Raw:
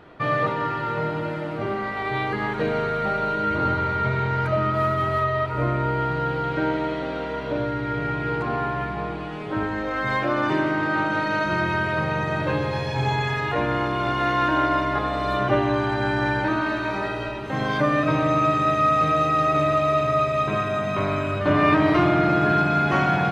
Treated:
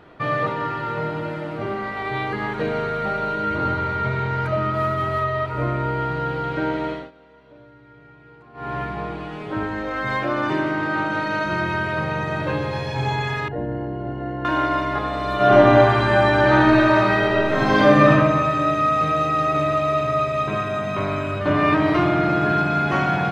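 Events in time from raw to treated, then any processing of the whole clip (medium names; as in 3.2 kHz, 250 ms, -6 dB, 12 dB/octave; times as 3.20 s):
6.90–8.75 s: dip -22 dB, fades 0.21 s
13.48–14.45 s: boxcar filter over 37 samples
15.35–18.08 s: reverb throw, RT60 1.7 s, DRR -7.5 dB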